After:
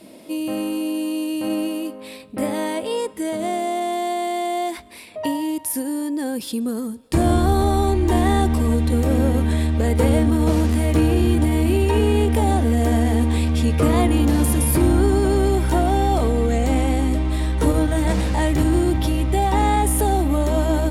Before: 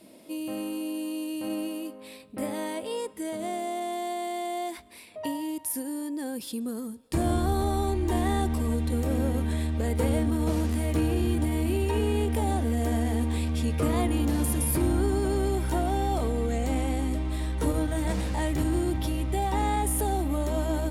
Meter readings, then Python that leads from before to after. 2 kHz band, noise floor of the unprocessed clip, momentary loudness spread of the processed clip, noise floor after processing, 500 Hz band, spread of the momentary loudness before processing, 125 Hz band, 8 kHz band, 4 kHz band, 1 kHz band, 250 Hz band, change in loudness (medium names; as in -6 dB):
+8.5 dB, -47 dBFS, 8 LU, -39 dBFS, +8.5 dB, 8 LU, +8.5 dB, +6.0 dB, +8.0 dB, +8.5 dB, +8.5 dB, +8.5 dB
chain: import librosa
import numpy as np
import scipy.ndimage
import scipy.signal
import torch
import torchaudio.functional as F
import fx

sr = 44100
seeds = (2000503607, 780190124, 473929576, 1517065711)

y = fx.high_shelf(x, sr, hz=8100.0, db=-4.0)
y = y * librosa.db_to_amplitude(8.5)